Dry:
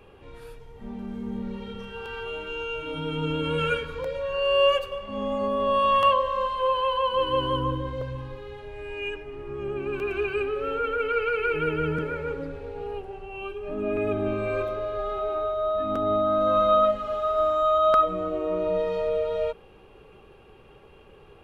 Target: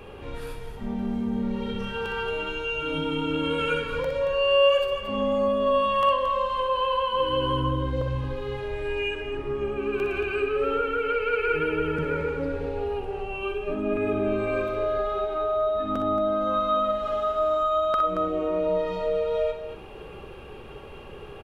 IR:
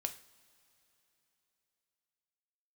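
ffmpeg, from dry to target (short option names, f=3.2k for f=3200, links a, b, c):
-filter_complex "[0:a]acompressor=threshold=-39dB:ratio=2,aecho=1:1:47|61|226:0.224|0.422|0.355,asplit=2[a][b];[1:a]atrim=start_sample=2205[c];[b][c]afir=irnorm=-1:irlink=0,volume=-11.5dB[d];[a][d]amix=inputs=2:normalize=0,volume=6.5dB"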